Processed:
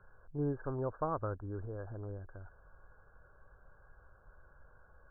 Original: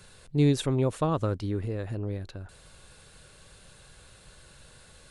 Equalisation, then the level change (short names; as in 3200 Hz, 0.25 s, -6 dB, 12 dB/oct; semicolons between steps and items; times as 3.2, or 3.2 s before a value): brick-wall FIR low-pass 1700 Hz; air absorption 490 m; bell 190 Hz -15 dB 2.6 oct; 0.0 dB